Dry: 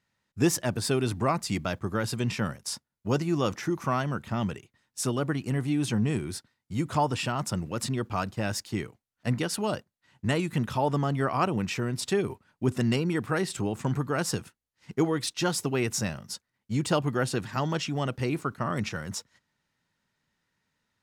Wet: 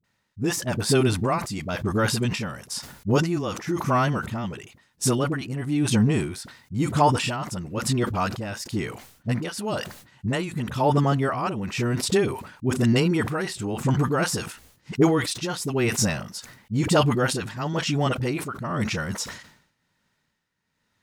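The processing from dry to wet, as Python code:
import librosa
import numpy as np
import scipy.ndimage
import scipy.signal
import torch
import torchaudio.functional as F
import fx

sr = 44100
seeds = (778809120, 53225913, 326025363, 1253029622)

y = x * (1.0 - 0.65 / 2.0 + 0.65 / 2.0 * np.cos(2.0 * np.pi * 1.0 * (np.arange(len(x)) / sr)))
y = fx.dispersion(y, sr, late='highs', ms=41.0, hz=480.0)
y = fx.sustainer(y, sr, db_per_s=88.0)
y = y * 10.0 ** (6.5 / 20.0)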